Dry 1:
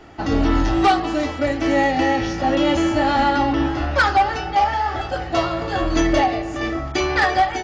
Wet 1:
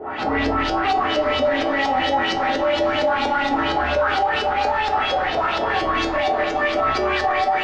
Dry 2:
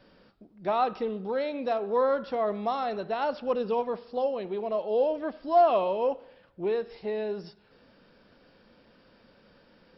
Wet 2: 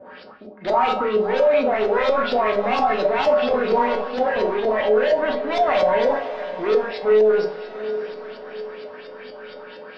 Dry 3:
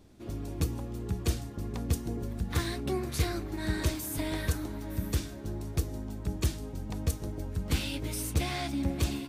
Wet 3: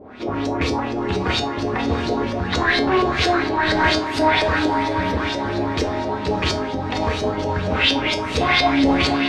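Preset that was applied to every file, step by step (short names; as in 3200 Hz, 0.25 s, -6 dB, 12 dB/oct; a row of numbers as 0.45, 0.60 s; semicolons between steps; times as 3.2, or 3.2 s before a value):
overdrive pedal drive 31 dB, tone 2900 Hz, clips at -9.5 dBFS; Schroeder reverb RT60 0.32 s, combs from 29 ms, DRR 0.5 dB; LFO low-pass saw up 4.3 Hz 460–5500 Hz; resonator 85 Hz, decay 0.28 s, harmonics odd, mix 80%; diffused feedback echo 0.621 s, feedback 49%, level -14 dB; maximiser +10.5 dB; match loudness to -20 LUFS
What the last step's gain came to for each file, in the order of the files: -10.5, -8.5, -3.0 dB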